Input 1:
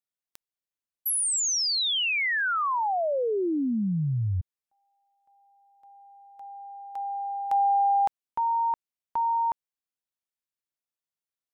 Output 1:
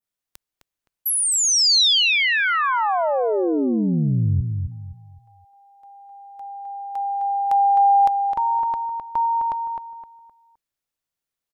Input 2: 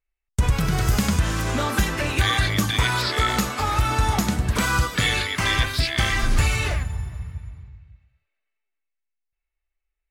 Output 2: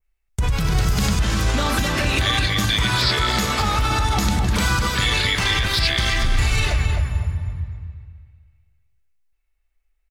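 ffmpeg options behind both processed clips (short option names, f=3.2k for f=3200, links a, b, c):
-filter_complex "[0:a]lowshelf=f=83:g=7,asplit=2[a][b];[b]acompressor=threshold=-29dB:ratio=6:attack=30:release=32:detection=rms,volume=-1dB[c];[a][c]amix=inputs=2:normalize=0,alimiter=limit=-13dB:level=0:latency=1:release=46,adynamicequalizer=threshold=0.01:dfrequency=4200:dqfactor=1:tfrequency=4200:tqfactor=1:attack=5:release=100:ratio=0.375:range=3:mode=boostabove:tftype=bell,asplit=2[d][e];[e]adelay=259,lowpass=f=2.6k:p=1,volume=-5dB,asplit=2[f][g];[g]adelay=259,lowpass=f=2.6k:p=1,volume=0.32,asplit=2[h][i];[i]adelay=259,lowpass=f=2.6k:p=1,volume=0.32,asplit=2[j][k];[k]adelay=259,lowpass=f=2.6k:p=1,volume=0.32[l];[d][f][h][j][l]amix=inputs=5:normalize=0"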